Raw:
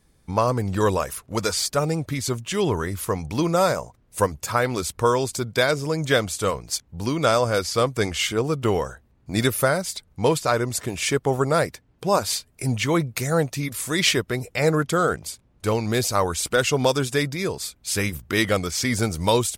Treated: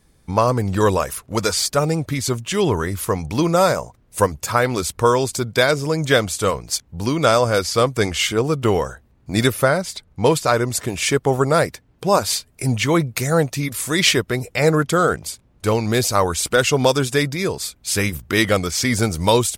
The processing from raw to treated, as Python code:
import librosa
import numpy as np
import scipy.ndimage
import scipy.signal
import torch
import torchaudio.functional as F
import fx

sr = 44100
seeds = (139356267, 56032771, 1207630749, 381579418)

y = fx.high_shelf(x, sr, hz=6400.0, db=-8.5, at=(9.52, 10.25))
y = y * librosa.db_to_amplitude(4.0)